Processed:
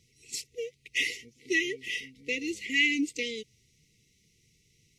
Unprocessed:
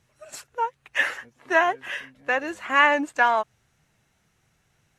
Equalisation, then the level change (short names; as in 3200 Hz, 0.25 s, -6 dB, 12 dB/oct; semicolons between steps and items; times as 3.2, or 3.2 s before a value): brick-wall FIR band-stop 500–1900 Hz; bell 5100 Hz +8 dB 0.88 oct; 0.0 dB